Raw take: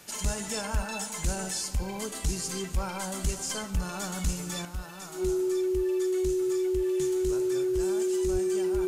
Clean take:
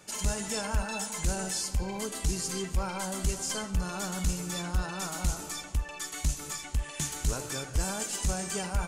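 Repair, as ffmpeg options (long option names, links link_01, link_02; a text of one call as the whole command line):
ffmpeg -i in.wav -filter_complex "[0:a]bandreject=frequency=370:width=30,asplit=3[link_01][link_02][link_03];[link_01]afade=type=out:start_time=8.32:duration=0.02[link_04];[link_02]highpass=frequency=140:width=0.5412,highpass=frequency=140:width=1.3066,afade=type=in:start_time=8.32:duration=0.02,afade=type=out:start_time=8.44:duration=0.02[link_05];[link_03]afade=type=in:start_time=8.44:duration=0.02[link_06];[link_04][link_05][link_06]amix=inputs=3:normalize=0,afwtdn=0.002,asetnsamples=nb_out_samples=441:pad=0,asendcmd='4.65 volume volume 7.5dB',volume=0dB" out.wav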